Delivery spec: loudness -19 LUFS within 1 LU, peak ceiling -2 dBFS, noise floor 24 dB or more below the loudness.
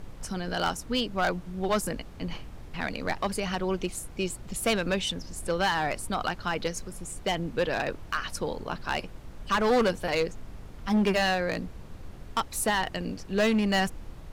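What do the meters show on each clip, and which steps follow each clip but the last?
clipped samples 1.7%; clipping level -19.5 dBFS; noise floor -44 dBFS; noise floor target -53 dBFS; loudness -29.0 LUFS; peak level -19.5 dBFS; loudness target -19.0 LUFS
-> clip repair -19.5 dBFS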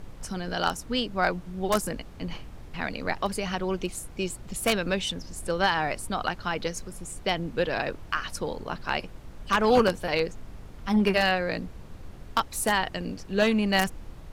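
clipped samples 0.0%; noise floor -44 dBFS; noise floor target -52 dBFS
-> noise print and reduce 8 dB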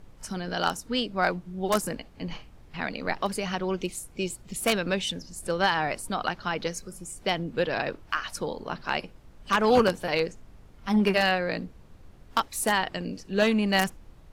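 noise floor -52 dBFS; loudness -28.0 LUFS; peak level -10.0 dBFS; loudness target -19.0 LUFS
-> trim +9 dB; peak limiter -2 dBFS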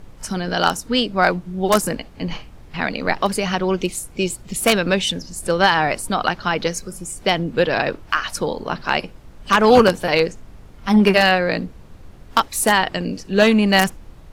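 loudness -19.0 LUFS; peak level -2.0 dBFS; noise floor -43 dBFS

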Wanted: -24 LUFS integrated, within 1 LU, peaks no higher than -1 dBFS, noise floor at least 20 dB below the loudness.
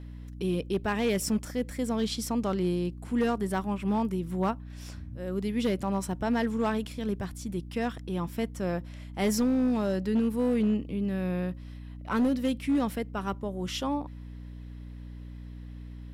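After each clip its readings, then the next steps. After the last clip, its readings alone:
clipped samples 1.0%; clipping level -20.5 dBFS; hum 60 Hz; highest harmonic 300 Hz; hum level -40 dBFS; loudness -30.0 LUFS; peak level -20.5 dBFS; loudness target -24.0 LUFS
-> clip repair -20.5 dBFS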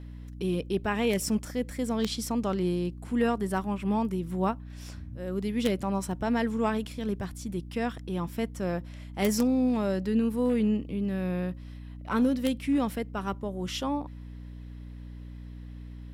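clipped samples 0.0%; hum 60 Hz; highest harmonic 300 Hz; hum level -40 dBFS
-> de-hum 60 Hz, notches 5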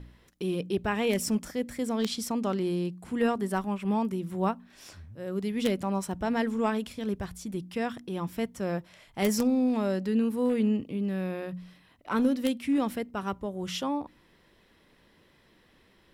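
hum not found; loudness -30.0 LUFS; peak level -11.0 dBFS; loudness target -24.0 LUFS
-> trim +6 dB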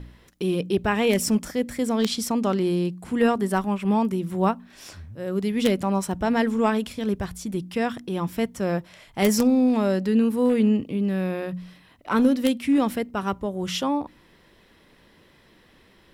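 loudness -24.0 LUFS; peak level -5.0 dBFS; noise floor -57 dBFS

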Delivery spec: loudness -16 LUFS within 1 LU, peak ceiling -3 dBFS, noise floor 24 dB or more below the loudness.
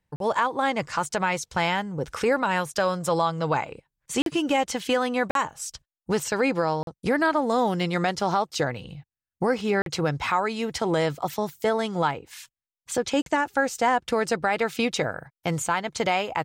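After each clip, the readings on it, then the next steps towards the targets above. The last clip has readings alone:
dropouts 6; longest dropout 42 ms; loudness -25.5 LUFS; peak level -10.0 dBFS; loudness target -16.0 LUFS
-> interpolate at 0.16/4.22/5.31/6.83/9.82/13.22 s, 42 ms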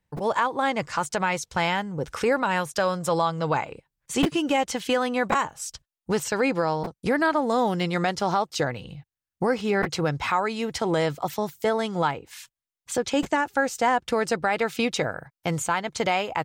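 dropouts 0; loudness -25.5 LUFS; peak level -9.0 dBFS; loudness target -16.0 LUFS
-> trim +9.5 dB; peak limiter -3 dBFS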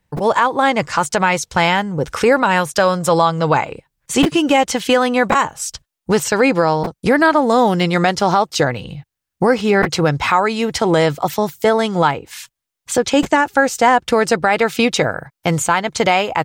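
loudness -16.0 LUFS; peak level -3.0 dBFS; noise floor -82 dBFS

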